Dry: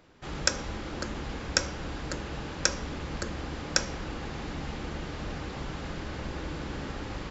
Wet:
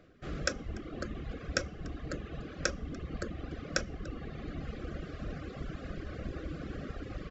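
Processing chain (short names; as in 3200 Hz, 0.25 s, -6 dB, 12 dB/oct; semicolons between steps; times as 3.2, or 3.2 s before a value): Butterworth band-stop 910 Hz, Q 2.5; high shelf 2400 Hz -11.5 dB; echo 0.292 s -17.5 dB; reverb removal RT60 1.7 s; reverse; upward compressor, threshold -47 dBFS; reverse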